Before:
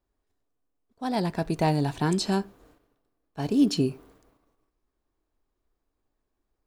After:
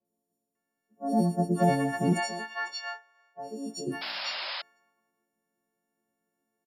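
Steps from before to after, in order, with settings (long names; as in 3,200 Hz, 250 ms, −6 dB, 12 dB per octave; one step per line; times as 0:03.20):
every partial snapped to a pitch grid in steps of 4 semitones
0:02.12–0:03.87: three-way crossover with the lows and the highs turned down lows −23 dB, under 530 Hz, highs −12 dB, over 6,600 Hz
harmonic and percussive parts rebalanced harmonic −4 dB
parametric band 1,300 Hz −9 dB 0.22 octaves
three-band delay without the direct sound lows, highs, mids 50/550 ms, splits 850/5,300 Hz
convolution reverb, pre-delay 3 ms, DRR 1 dB
0:04.01–0:04.62: sound drawn into the spectrogram noise 520–5,300 Hz −29 dBFS
level −6.5 dB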